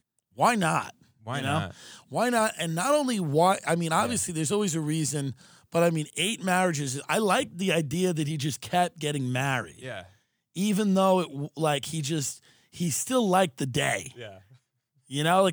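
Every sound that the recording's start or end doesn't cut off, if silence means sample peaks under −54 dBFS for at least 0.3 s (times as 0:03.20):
0:10.55–0:14.57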